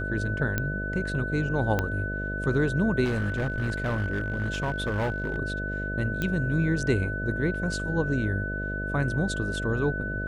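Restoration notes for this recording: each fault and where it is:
buzz 50 Hz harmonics 13 -33 dBFS
whine 1.5 kHz -32 dBFS
0.58 s: pop -12 dBFS
1.79 s: pop -12 dBFS
3.04–5.37 s: clipped -23 dBFS
6.22 s: pop -15 dBFS

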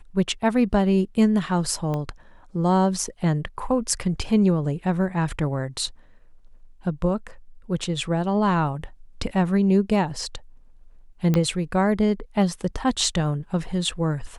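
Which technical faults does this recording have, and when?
1.94 s: pop -17 dBFS
11.34 s: pop -10 dBFS

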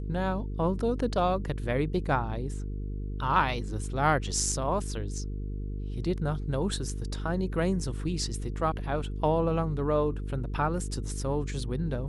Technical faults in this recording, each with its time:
buzz 50 Hz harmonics 9 -34 dBFS

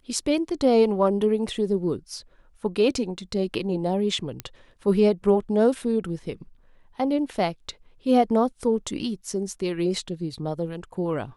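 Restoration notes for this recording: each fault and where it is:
4.40 s: pop -14 dBFS

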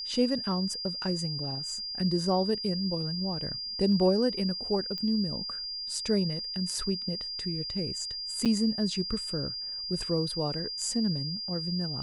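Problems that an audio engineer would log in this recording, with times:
whine 4.8 kHz -34 dBFS
4.98 s: pop -23 dBFS
8.45–8.46 s: dropout 7.2 ms

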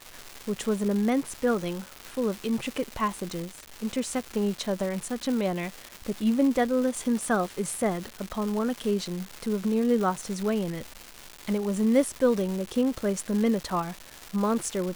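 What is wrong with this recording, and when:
crackle 510 per s -31 dBFS

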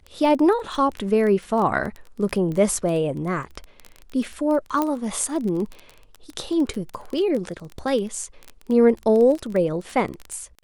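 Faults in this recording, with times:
crackle 17 per s -26 dBFS
4.82 s: pop -10 dBFS

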